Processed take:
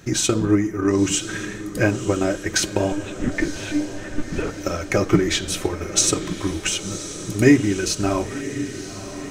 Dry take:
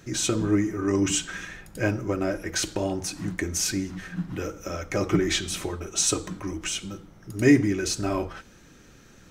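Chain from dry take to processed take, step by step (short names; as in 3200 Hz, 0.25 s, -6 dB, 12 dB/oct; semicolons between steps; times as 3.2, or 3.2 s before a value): in parallel at -1 dB: limiter -17.5 dBFS, peak gain reduction 10 dB; on the sum: transient shaper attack +6 dB, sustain -4 dB; 2.92–4.51 monotone LPC vocoder at 8 kHz 300 Hz; on a send: diffused feedback echo 1.023 s, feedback 58%, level -12 dB; on the sum: gain -1 dB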